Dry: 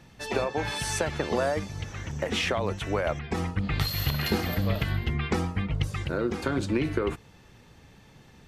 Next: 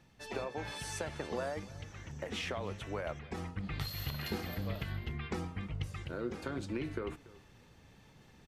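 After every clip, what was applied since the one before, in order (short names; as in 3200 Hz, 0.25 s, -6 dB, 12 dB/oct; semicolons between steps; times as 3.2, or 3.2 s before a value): reverse; upward compressor, threshold -41 dBFS; reverse; flange 0.59 Hz, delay 2.2 ms, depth 9.9 ms, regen +90%; echo 0.286 s -20 dB; gain -6.5 dB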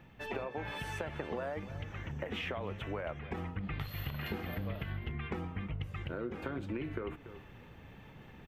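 band shelf 6700 Hz -15 dB; compressor 3:1, threshold -44 dBFS, peak gain reduction 9.5 dB; gain +7 dB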